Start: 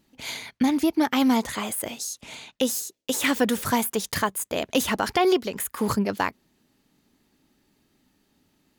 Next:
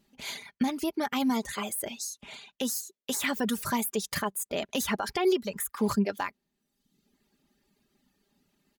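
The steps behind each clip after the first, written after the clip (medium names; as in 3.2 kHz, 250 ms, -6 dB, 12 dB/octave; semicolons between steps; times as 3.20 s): reverb removal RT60 0.89 s; peak limiter -15 dBFS, peak gain reduction 4.5 dB; comb 5 ms, depth 47%; trim -4 dB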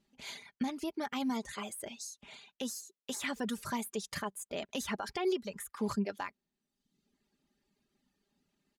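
low-pass 9.8 kHz 12 dB/octave; trim -7 dB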